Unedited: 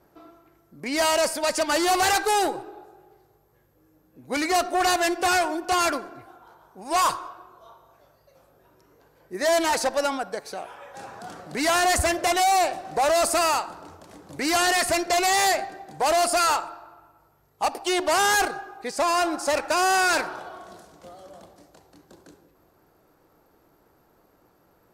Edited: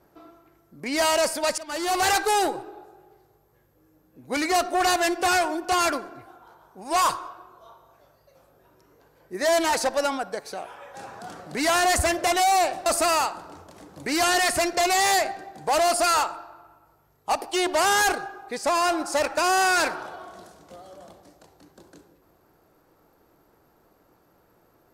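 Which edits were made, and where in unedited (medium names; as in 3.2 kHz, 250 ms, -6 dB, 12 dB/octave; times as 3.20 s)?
1.58–2.09 s: fade in, from -19.5 dB
12.86–13.19 s: delete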